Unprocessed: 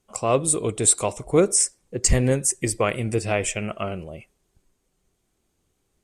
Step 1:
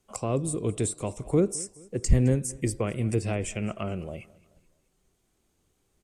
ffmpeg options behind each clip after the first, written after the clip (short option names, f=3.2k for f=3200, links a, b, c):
-filter_complex "[0:a]acrossover=split=360[a][b];[b]acompressor=threshold=-34dB:ratio=4[c];[a][c]amix=inputs=2:normalize=0,aecho=1:1:213|426|639:0.0794|0.0342|0.0147"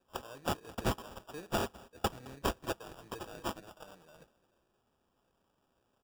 -af "aderivative,aecho=1:1:6.6:0.56,acrusher=samples=21:mix=1:aa=0.000001"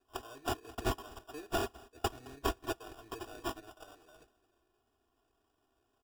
-af "aecho=1:1:2.8:0.91,volume=-3.5dB"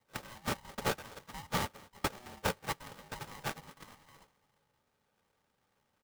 -af "aeval=exprs='val(0)*sgn(sin(2*PI*490*n/s))':c=same"